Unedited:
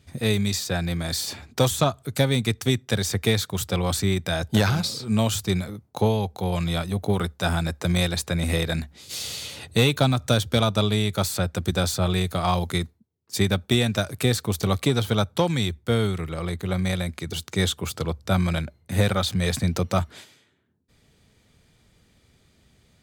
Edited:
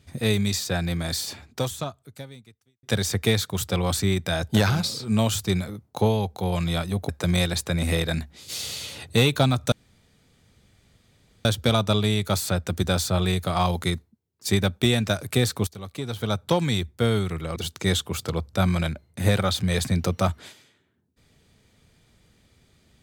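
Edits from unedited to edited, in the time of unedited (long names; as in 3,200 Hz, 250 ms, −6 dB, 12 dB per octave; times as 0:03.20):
0:01.08–0:02.83: fade out quadratic
0:07.09–0:07.70: remove
0:10.33: splice in room tone 1.73 s
0:14.55–0:15.36: fade in quadratic, from −16.5 dB
0:16.44–0:17.28: remove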